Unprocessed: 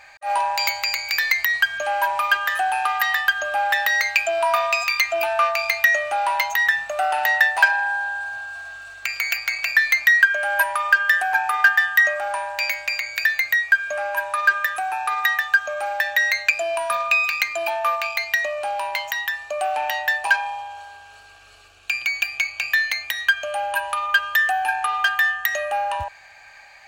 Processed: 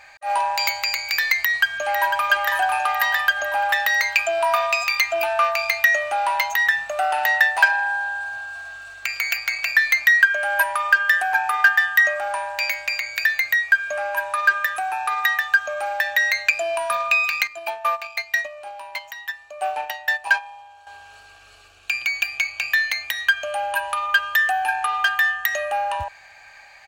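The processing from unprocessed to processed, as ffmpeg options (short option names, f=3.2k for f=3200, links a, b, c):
-filter_complex "[0:a]asplit=2[a][b];[b]afade=t=in:st=1.38:d=0.01,afade=t=out:st=2.28:d=0.01,aecho=0:1:500|1000|1500|2000|2500|3000|3500|4000|4500:0.421697|0.274103|0.178167|0.115808|0.0752755|0.048929|0.0318039|0.0206725|0.0134371[c];[a][c]amix=inputs=2:normalize=0,asettb=1/sr,asplit=3[d][e][f];[d]atrim=end=17.474[g];[e]atrim=start=17.47:end=20.87,asetpts=PTS-STARTPTS,afade=t=in:d=0.004:c=qsin,afade=t=out:st=3.396:d=0.004:c=qsin,agate=range=-11dB:threshold=-24dB:ratio=16:release=100:detection=peak[h];[f]atrim=start=20.866[i];[g][h]acrossfade=d=0.004:c1=hsin:c2=qsin[j];[j][i]acrossfade=d=0.004:c1=qsin:c2=hsin"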